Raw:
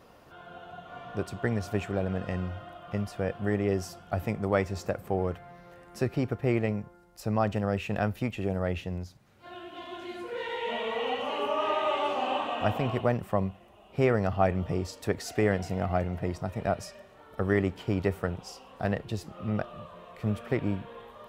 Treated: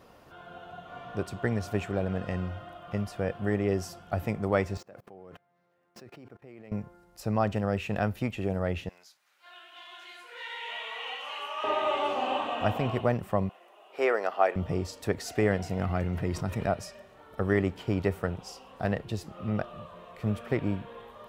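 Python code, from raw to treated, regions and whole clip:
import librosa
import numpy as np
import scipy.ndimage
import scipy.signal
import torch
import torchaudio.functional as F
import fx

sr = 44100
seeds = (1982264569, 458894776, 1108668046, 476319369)

y = fx.chain(x, sr, fx.median_filter(points=5),
    fx.highpass(hz=160.0, slope=12),
    fx.level_steps(step_db=24), at=(4.77, 6.72))
y = fx.chain(y, sr, fx.highpass(hz=1300.0, slope=12),
    fx.doubler(ms=27.0, db=-12.5), at=(8.89, 11.64))
y = fx.chain(y, sr, fx.highpass(hz=370.0, slope=24),
    fx.peak_eq(hz=1500.0, db=3.5, octaves=1.6), at=(13.49, 14.56))
y = fx.chain(y, sr, fx.peak_eq(hz=670.0, db=-7.0, octaves=0.74),
    fx.env_flatten(amount_pct=50), at=(15.79, 16.66))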